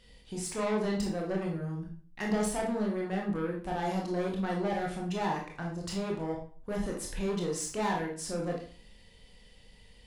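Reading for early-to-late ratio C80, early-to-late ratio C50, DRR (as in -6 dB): 10.5 dB, 5.0 dB, -1.5 dB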